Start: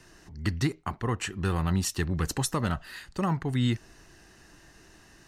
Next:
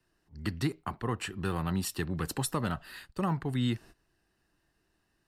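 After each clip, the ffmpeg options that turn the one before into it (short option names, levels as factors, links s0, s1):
-filter_complex "[0:a]agate=range=0.141:threshold=0.00562:ratio=16:detection=peak,equalizer=f=2000:t=o:w=0.33:g=-3,equalizer=f=6300:t=o:w=0.33:g=-10,equalizer=f=12500:t=o:w=0.33:g=4,acrossover=split=110|1600[s0][s1][s2];[s0]acompressor=threshold=0.00708:ratio=6[s3];[s3][s1][s2]amix=inputs=3:normalize=0,volume=0.75"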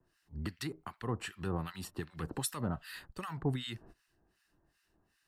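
-filter_complex "[0:a]alimiter=level_in=1.26:limit=0.0631:level=0:latency=1:release=292,volume=0.794,acrossover=split=1200[s0][s1];[s0]aeval=exprs='val(0)*(1-1/2+1/2*cos(2*PI*2.6*n/s))':c=same[s2];[s1]aeval=exprs='val(0)*(1-1/2-1/2*cos(2*PI*2.6*n/s))':c=same[s3];[s2][s3]amix=inputs=2:normalize=0,volume=1.68"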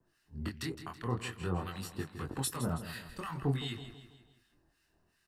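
-filter_complex "[0:a]flanger=delay=20:depth=5.5:speed=0.51,asplit=2[s0][s1];[s1]aecho=0:1:163|326|489|652|815:0.266|0.125|0.0588|0.0276|0.013[s2];[s0][s2]amix=inputs=2:normalize=0,volume=1.58"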